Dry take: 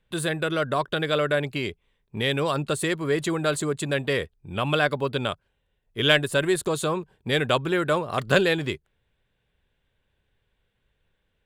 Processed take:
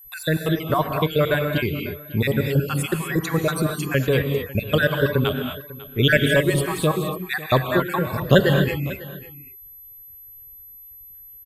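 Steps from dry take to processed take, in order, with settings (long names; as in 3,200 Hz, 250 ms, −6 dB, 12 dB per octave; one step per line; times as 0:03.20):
time-frequency cells dropped at random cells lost 57%
reverb reduction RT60 1 s
steady tone 12,000 Hz −47 dBFS
low-shelf EQ 210 Hz +11.5 dB
single-tap delay 547 ms −18.5 dB
reverb whose tail is shaped and stops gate 270 ms rising, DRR 4 dB
level +3.5 dB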